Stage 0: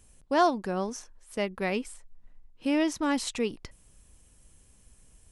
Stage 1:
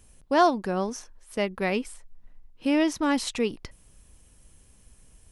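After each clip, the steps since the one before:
parametric band 7,600 Hz −3.5 dB 0.45 octaves
level +3 dB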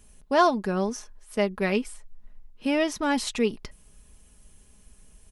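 comb filter 4.8 ms, depth 44%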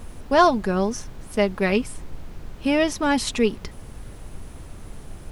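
background noise brown −40 dBFS
level +4 dB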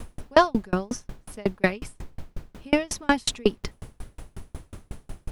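tremolo with a ramp in dB decaying 5.5 Hz, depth 36 dB
level +5.5 dB

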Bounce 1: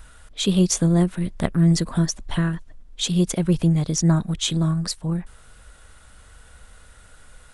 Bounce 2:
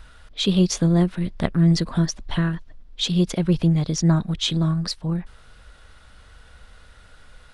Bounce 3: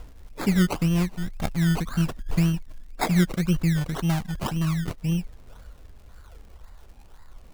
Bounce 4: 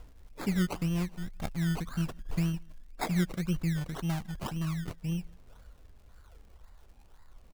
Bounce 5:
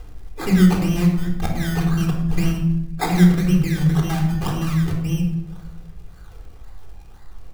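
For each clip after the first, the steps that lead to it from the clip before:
high shelf with overshoot 6,100 Hz −8 dB, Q 1.5
phase shifter 0.36 Hz, delay 1.3 ms, feedback 66%; sample-and-hold swept by an LFO 21×, swing 60% 1.9 Hz; surface crackle 88 per second −39 dBFS; level −6 dB
slap from a distant wall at 28 metres, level −28 dB; level −8 dB
rectangular room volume 2,500 cubic metres, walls furnished, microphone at 3.8 metres; level +8 dB

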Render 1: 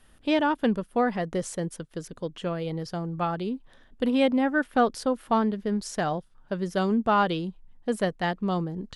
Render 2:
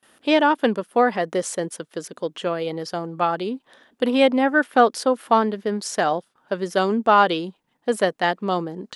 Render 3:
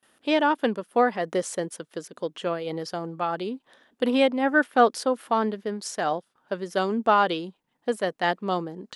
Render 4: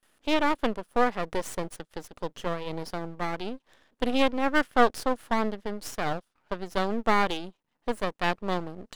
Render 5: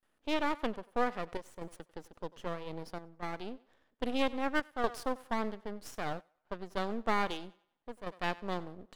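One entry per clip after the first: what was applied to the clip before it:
noise gate with hold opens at −49 dBFS; high-pass filter 310 Hz 12 dB per octave; level +7.5 dB
amplitude modulation by smooth noise, depth 60%; level −1.5 dB
half-wave rectification
feedback echo with a high-pass in the loop 94 ms, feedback 43%, high-pass 400 Hz, level −19 dB; square-wave tremolo 0.62 Hz, depth 60%, duty 85%; one half of a high-frequency compander decoder only; level −7.5 dB

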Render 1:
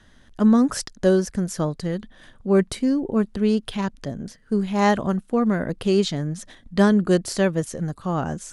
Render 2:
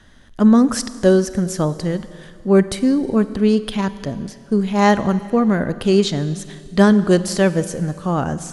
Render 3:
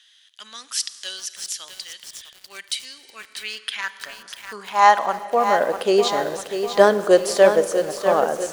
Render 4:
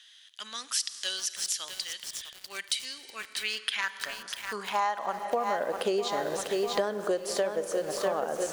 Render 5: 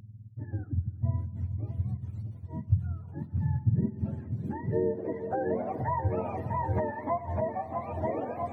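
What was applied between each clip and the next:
convolution reverb RT60 2.2 s, pre-delay 35 ms, DRR 14 dB; level +4.5 dB
high-pass filter sweep 3,100 Hz → 530 Hz, 0:02.87–0:05.76; feedback echo at a low word length 647 ms, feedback 55%, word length 6 bits, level −7.5 dB; level −1 dB
downward compressor 16 to 1, threshold −25 dBFS, peak gain reduction 18.5 dB
frequency axis turned over on the octave scale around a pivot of 610 Hz

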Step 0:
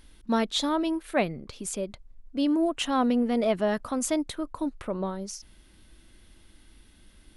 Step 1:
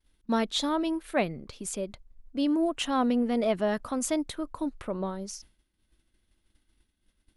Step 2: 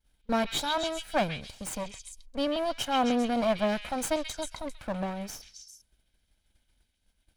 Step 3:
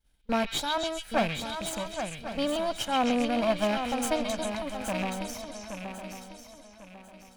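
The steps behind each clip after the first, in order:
downward expander −42 dBFS; level −1.5 dB
lower of the sound and its delayed copy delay 1.3 ms; echo through a band-pass that steps 133 ms, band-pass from 3,000 Hz, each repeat 0.7 octaves, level −1 dB
loose part that buzzes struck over −35 dBFS, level −25 dBFS; feedback echo with a long and a short gap by turns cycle 1,097 ms, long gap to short 3 to 1, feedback 31%, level −7.5 dB

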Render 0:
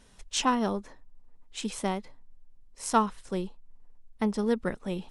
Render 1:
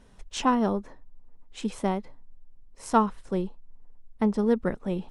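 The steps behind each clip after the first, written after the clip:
high-shelf EQ 2,000 Hz −11 dB
level +4 dB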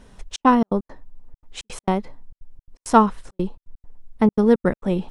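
gate pattern "xxxx.xx.x.x" 168 BPM −60 dB
level +7.5 dB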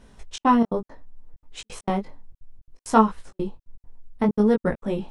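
chorus effect 0.64 Hz, delay 18 ms, depth 4 ms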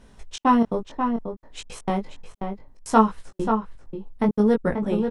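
slap from a distant wall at 92 metres, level −6 dB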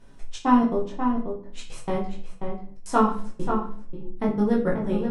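rectangular room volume 49 cubic metres, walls mixed, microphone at 0.65 metres
level −5.5 dB

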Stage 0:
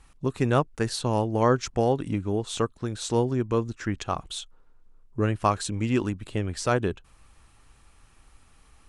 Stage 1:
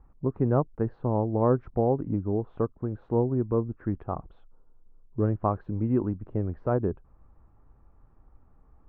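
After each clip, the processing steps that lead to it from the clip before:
Bessel low-pass filter 770 Hz, order 4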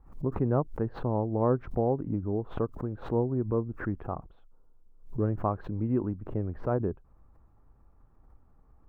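background raised ahead of every attack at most 130 dB per second
level −3 dB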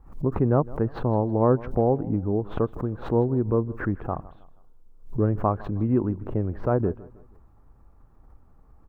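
repeating echo 159 ms, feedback 38%, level −20 dB
level +5.5 dB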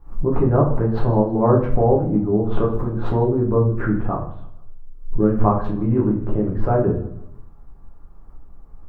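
convolution reverb RT60 0.50 s, pre-delay 6 ms, DRR −3 dB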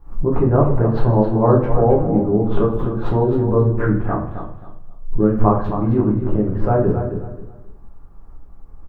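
repeating echo 266 ms, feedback 25%, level −9 dB
level +1.5 dB

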